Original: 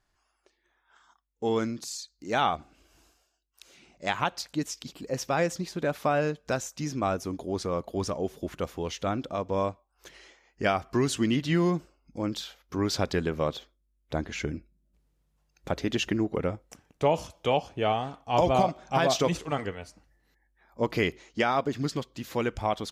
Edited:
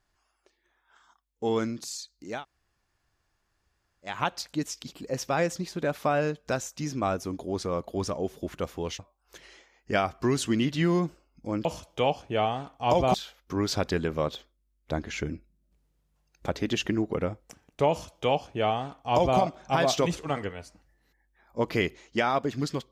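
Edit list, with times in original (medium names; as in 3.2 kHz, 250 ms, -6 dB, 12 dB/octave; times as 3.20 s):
2.33–4.12 s: room tone, crossfade 0.24 s
8.99–9.70 s: delete
17.12–18.61 s: copy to 12.36 s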